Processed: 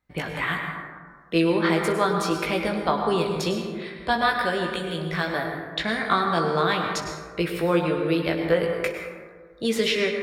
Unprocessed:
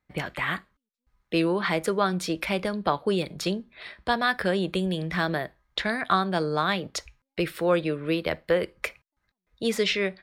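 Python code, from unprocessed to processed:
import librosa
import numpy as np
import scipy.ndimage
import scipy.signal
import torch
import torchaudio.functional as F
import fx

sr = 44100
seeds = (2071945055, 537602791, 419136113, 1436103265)

y = fx.low_shelf(x, sr, hz=440.0, db=-5.5, at=(4.33, 5.36))
y = fx.room_early_taps(y, sr, ms=(18, 63), db=(-5.5, -16.5))
y = fx.rev_plate(y, sr, seeds[0], rt60_s=1.7, hf_ratio=0.35, predelay_ms=90, drr_db=3.0)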